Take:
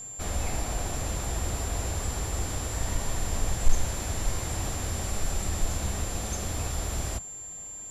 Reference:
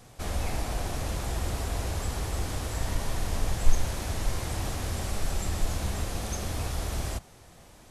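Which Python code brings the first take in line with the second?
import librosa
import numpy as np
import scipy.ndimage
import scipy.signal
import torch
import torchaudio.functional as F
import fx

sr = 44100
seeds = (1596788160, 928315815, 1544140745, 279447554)

y = fx.fix_declip(x, sr, threshold_db=-8.5)
y = fx.notch(y, sr, hz=7300.0, q=30.0)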